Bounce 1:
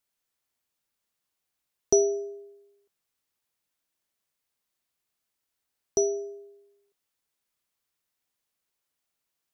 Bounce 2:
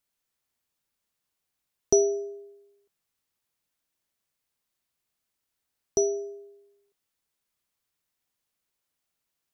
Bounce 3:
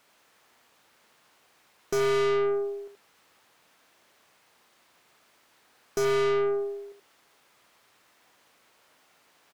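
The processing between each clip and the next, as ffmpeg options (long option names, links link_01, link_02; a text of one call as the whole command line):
ffmpeg -i in.wav -af "bass=frequency=250:gain=3,treble=frequency=4000:gain=0" out.wav
ffmpeg -i in.wav -filter_complex "[0:a]asplit=2[link_01][link_02];[link_02]highpass=frequency=720:poles=1,volume=36dB,asoftclip=type=tanh:threshold=-8dB[link_03];[link_01][link_03]amix=inputs=2:normalize=0,lowpass=frequency=1100:poles=1,volume=-6dB,aecho=1:1:77:0.531,aeval=exprs='(tanh(17.8*val(0)+0.25)-tanh(0.25))/17.8':channel_layout=same,volume=1.5dB" out.wav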